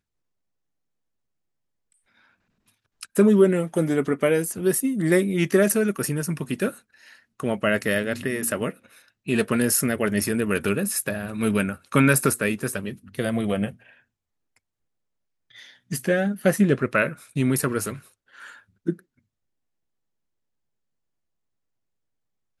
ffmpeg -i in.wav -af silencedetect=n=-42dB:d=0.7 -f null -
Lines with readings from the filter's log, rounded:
silence_start: 0.00
silence_end: 3.01 | silence_duration: 3.01
silence_start: 13.89
silence_end: 15.55 | silence_duration: 1.66
silence_start: 18.99
silence_end: 22.60 | silence_duration: 3.61